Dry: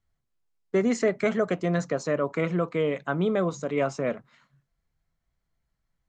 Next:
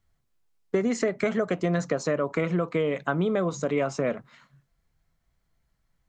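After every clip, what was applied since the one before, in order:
downward compressor, threshold −27 dBFS, peak gain reduction 9 dB
level +5.5 dB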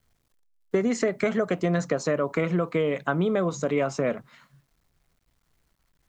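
bit reduction 12 bits
level +1 dB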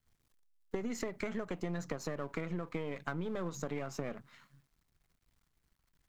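gain on one half-wave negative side −7 dB
parametric band 580 Hz −4 dB 1 octave
downward compressor, threshold −30 dBFS, peak gain reduction 8.5 dB
level −3.5 dB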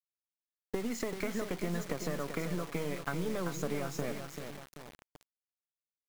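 on a send: repeating echo 387 ms, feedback 44%, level −8 dB
on the sum: bit-depth reduction 8 bits, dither none
level +2 dB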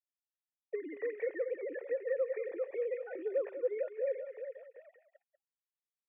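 three sine waves on the formant tracks
formant resonators in series e
single-tap delay 192 ms −11.5 dB
level +5.5 dB

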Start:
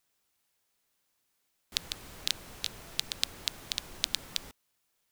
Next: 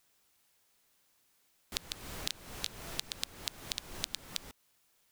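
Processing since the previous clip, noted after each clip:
downward compressor 5 to 1, threshold −39 dBFS, peak gain reduction 15 dB
level +5.5 dB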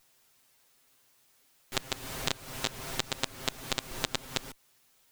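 lower of the sound and its delayed copy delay 7.6 ms
level +7 dB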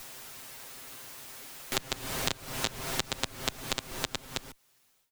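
fade-out on the ending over 1.56 s
multiband upward and downward compressor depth 70%
level +1.5 dB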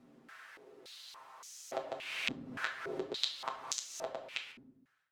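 rectangular room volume 180 cubic metres, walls mixed, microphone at 0.69 metres
band-pass on a step sequencer 3.5 Hz 250–6,300 Hz
level +4.5 dB

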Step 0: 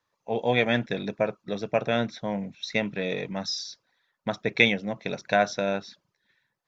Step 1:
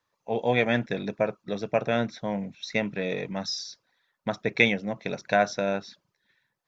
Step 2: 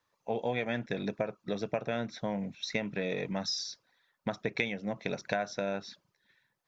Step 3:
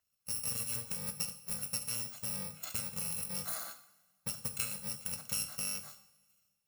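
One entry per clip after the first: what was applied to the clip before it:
dynamic equaliser 3,400 Hz, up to −4 dB, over −45 dBFS, Q 2.3
downward compressor 5 to 1, threshold −29 dBFS, peak gain reduction 14 dB
samples in bit-reversed order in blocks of 128 samples; coupled-rooms reverb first 0.64 s, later 1.9 s, from −19 dB, DRR 6.5 dB; level −5 dB

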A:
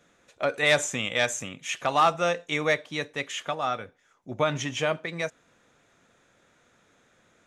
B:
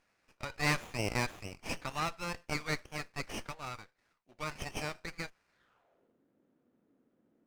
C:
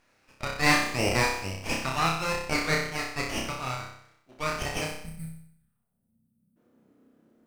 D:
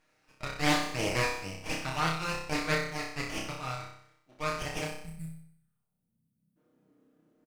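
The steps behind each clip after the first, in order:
band-pass filter sweep 2,800 Hz → 270 Hz, 0:05.48–0:06.16; windowed peak hold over 9 samples
gain on a spectral selection 0:04.85–0:06.57, 240–8,000 Hz −28 dB; on a send: flutter between parallel walls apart 5.3 metres, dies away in 0.67 s; on the sum: level +6.5 dB
comb filter 6.5 ms, depth 52%; highs frequency-modulated by the lows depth 0.37 ms; level −5.5 dB

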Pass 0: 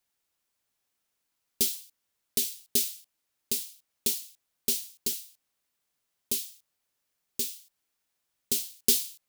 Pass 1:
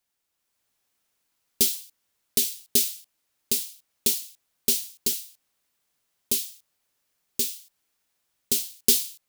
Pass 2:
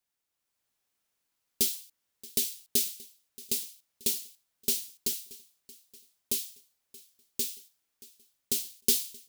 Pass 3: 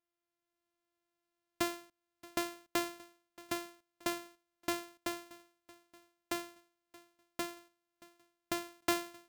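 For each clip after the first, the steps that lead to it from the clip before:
automatic gain control gain up to 5 dB
repeating echo 627 ms, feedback 50%, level −21 dB; level −5.5 dB
samples sorted by size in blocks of 128 samples; level −7 dB

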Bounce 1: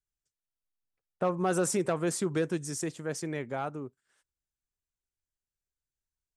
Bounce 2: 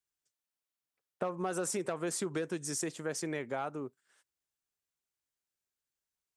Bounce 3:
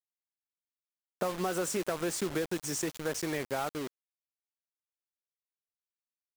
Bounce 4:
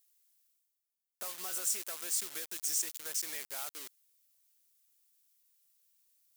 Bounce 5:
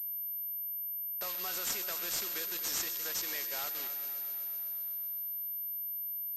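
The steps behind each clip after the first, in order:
high-pass filter 280 Hz 6 dB per octave; downward compressor 5 to 1, threshold −34 dBFS, peak gain reduction 9.5 dB; level +2.5 dB
parametric band 10,000 Hz −5.5 dB 0.52 octaves; bit reduction 7 bits; level +2.5 dB
first difference; reversed playback; upward compression, threshold −59 dBFS; reversed playback; level +4 dB
noise that follows the level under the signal 17 dB; echo machine with several playback heads 126 ms, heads first and second, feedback 71%, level −14 dB; switching amplifier with a slow clock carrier 13,000 Hz; level +3.5 dB

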